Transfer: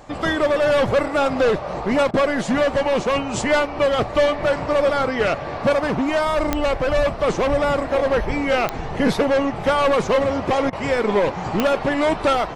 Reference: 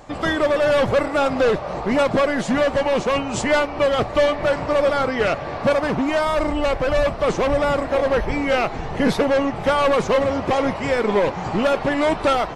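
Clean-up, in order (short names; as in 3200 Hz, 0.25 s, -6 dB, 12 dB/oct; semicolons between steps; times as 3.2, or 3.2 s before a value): de-click; interpolate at 2.11/10.7, 26 ms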